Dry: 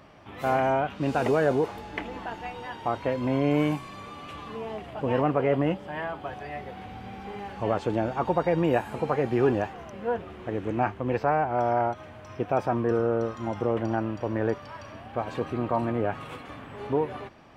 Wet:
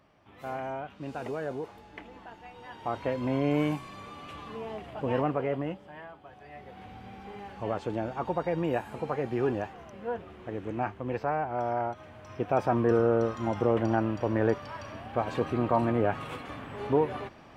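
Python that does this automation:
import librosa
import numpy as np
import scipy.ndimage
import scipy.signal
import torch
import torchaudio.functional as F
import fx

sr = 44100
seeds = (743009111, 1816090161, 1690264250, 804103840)

y = fx.gain(x, sr, db=fx.line((2.47, -11.5), (2.98, -3.0), (5.18, -3.0), (6.25, -15.0), (6.84, -5.5), (11.89, -5.5), (12.83, 1.0)))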